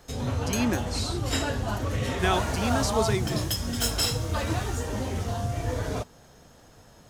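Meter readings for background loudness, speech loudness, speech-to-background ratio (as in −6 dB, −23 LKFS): −29.0 LKFS, −30.0 LKFS, −1.0 dB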